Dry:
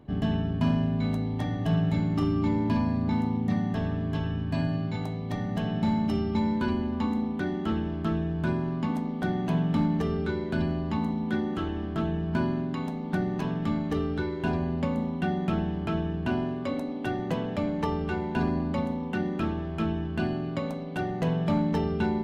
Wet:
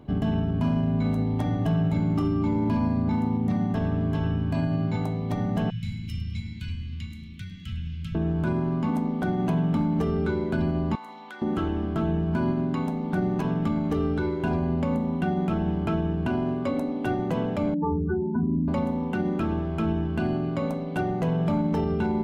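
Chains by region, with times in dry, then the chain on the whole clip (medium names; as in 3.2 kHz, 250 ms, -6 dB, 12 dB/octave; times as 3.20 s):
5.70–8.15 s: elliptic band-stop 130–2300 Hz, stop band 80 dB + frequency-shifting echo 103 ms, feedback 31%, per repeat +78 Hz, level -16.5 dB
10.95–11.42 s: high-pass 990 Hz + compression 4:1, threshold -41 dBFS
17.74–18.68 s: spectral contrast enhancement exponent 2.8 + brick-wall FIR low-pass 2.1 kHz
whole clip: band-stop 1.8 kHz, Q 12; dynamic bell 4 kHz, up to -6 dB, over -55 dBFS, Q 0.83; peak limiter -21.5 dBFS; trim +4.5 dB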